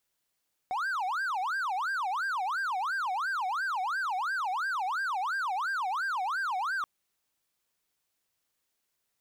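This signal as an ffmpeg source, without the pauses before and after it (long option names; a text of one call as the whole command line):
ffmpeg -f lavfi -i "aevalsrc='0.0473*(1-4*abs(mod((1166*t-434/(2*PI*2.9)*sin(2*PI*2.9*t))+0.25,1)-0.5))':duration=6.13:sample_rate=44100" out.wav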